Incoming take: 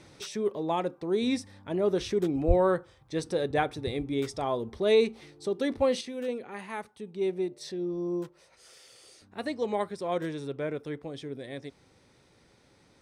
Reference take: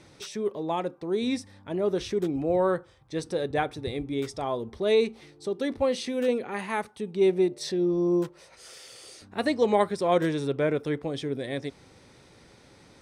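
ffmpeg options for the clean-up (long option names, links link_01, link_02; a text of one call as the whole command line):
ffmpeg -i in.wav -filter_complex "[0:a]asplit=3[link_01][link_02][link_03];[link_01]afade=type=out:start_time=2.47:duration=0.02[link_04];[link_02]highpass=frequency=140:width=0.5412,highpass=frequency=140:width=1.3066,afade=type=in:start_time=2.47:duration=0.02,afade=type=out:start_time=2.59:duration=0.02[link_05];[link_03]afade=type=in:start_time=2.59:duration=0.02[link_06];[link_04][link_05][link_06]amix=inputs=3:normalize=0,asetnsamples=nb_out_samples=441:pad=0,asendcmd='6.01 volume volume 7.5dB',volume=0dB" out.wav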